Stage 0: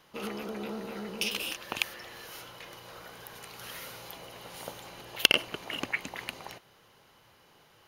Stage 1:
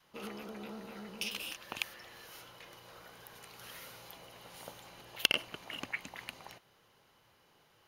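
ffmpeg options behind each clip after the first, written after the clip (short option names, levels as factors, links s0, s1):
-af "adynamicequalizer=threshold=0.00224:dfrequency=400:dqfactor=1.6:tfrequency=400:tqfactor=1.6:attack=5:release=100:ratio=0.375:range=2.5:mode=cutabove:tftype=bell,volume=0.473"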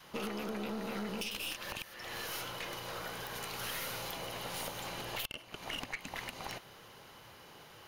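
-af "acompressor=threshold=0.00501:ratio=16,aeval=exprs='(tanh(178*val(0)+0.4)-tanh(0.4))/178':c=same,volume=5.01"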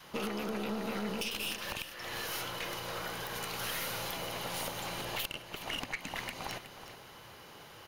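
-af "aecho=1:1:369:0.251,volume=1.33"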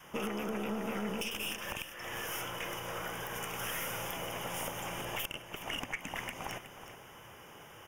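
-af "asuperstop=centerf=4200:order=4:qfactor=2"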